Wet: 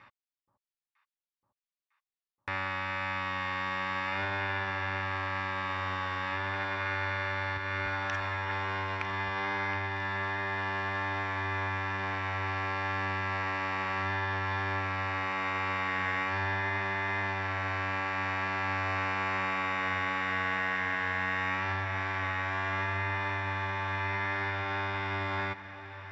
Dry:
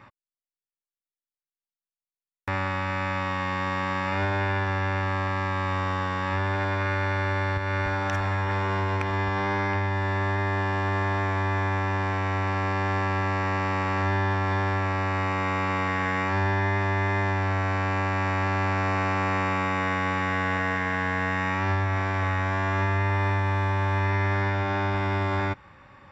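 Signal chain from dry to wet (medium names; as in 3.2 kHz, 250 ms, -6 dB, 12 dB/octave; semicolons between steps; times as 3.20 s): low-pass 4.3 kHz 12 dB/octave; tilt shelf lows -6.5 dB; echo whose repeats swap between lows and highs 476 ms, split 940 Hz, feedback 84%, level -14 dB; trim -6 dB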